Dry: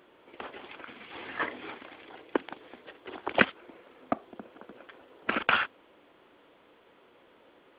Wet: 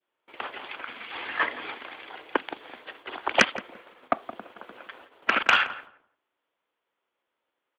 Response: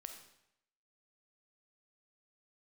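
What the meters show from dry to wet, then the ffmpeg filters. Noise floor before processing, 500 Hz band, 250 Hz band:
-61 dBFS, +2.0 dB, -1.5 dB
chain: -filter_complex "[0:a]acrossover=split=670[s0][s1];[s1]aeval=exprs='0.708*sin(PI/2*2.24*val(0)/0.708)':c=same[s2];[s0][s2]amix=inputs=2:normalize=0,adynamicequalizer=threshold=0.0178:dfrequency=1300:dqfactor=0.93:tfrequency=1300:tqfactor=0.93:attack=5:release=100:ratio=0.375:range=4:mode=cutabove:tftype=bell,agate=range=0.0398:threshold=0.00447:ratio=16:detection=peak,asplit=2[s3][s4];[s4]adelay=170,lowpass=f=1100:p=1,volume=0.251,asplit=2[s5][s6];[s6]adelay=170,lowpass=f=1100:p=1,volume=0.21,asplit=2[s7][s8];[s8]adelay=170,lowpass=f=1100:p=1,volume=0.21[s9];[s3][s5][s7][s9]amix=inputs=4:normalize=0,volume=0.75"

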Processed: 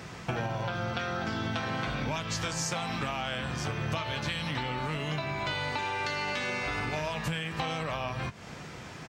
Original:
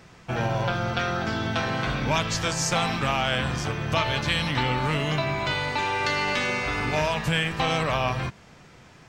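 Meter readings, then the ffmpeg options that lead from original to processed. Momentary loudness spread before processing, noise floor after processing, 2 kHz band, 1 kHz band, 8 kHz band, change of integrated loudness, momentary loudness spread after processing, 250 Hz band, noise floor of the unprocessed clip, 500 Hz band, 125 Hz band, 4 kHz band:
3 LU, -44 dBFS, -7.0 dB, -7.0 dB, -6.0 dB, -7.0 dB, 3 LU, -6.5 dB, -51 dBFS, -7.5 dB, -6.5 dB, -7.5 dB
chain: -filter_complex "[0:a]highpass=52,acompressor=threshold=0.0158:ratio=16,asplit=2[s0][s1];[s1]adelay=19,volume=0.2[s2];[s0][s2]amix=inputs=2:normalize=0,volume=2.24"

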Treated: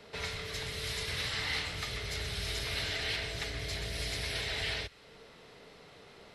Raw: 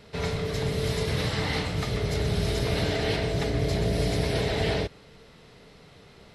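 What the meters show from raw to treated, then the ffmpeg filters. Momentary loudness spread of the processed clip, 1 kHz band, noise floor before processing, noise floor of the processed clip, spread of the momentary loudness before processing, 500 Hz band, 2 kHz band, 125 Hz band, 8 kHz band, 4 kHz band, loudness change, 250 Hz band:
21 LU, -10.0 dB, -52 dBFS, -56 dBFS, 3 LU, -15.0 dB, -2.0 dB, -14.5 dB, -2.0 dB, -1.5 dB, -7.5 dB, -18.5 dB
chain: -filter_complex "[0:a]acrossover=split=100|1400|5500[s0][s1][s2][s3];[s1]acompressor=threshold=0.00891:ratio=12[s4];[s0][s4][s2][s3]amix=inputs=4:normalize=0,bass=f=250:g=-9,treble=f=4000:g=-2" -ar 48000 -c:a libmp3lame -b:a 96k

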